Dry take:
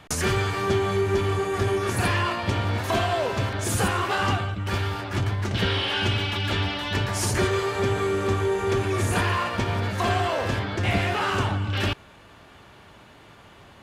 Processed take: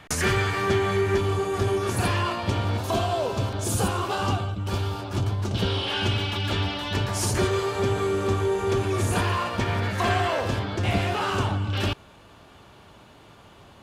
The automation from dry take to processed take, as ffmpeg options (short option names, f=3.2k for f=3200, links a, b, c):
-af "asetnsamples=n=441:p=0,asendcmd='1.18 equalizer g -5.5;2.77 equalizer g -12.5;5.87 equalizer g -5;9.61 equalizer g 2.5;10.4 equalizer g -5.5',equalizer=f=1.9k:t=o:w=0.75:g=4"